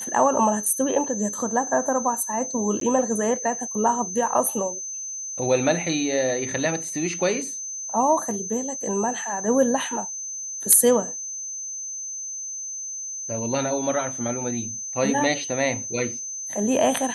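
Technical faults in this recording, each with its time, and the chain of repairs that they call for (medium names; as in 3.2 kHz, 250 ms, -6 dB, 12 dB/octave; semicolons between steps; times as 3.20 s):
whine 6.2 kHz -30 dBFS
2.80–2.81 s: dropout 13 ms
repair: band-stop 6.2 kHz, Q 30; interpolate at 2.80 s, 13 ms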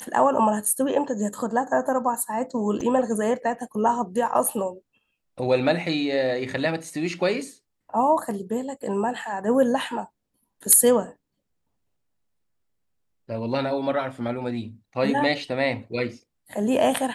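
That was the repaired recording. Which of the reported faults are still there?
nothing left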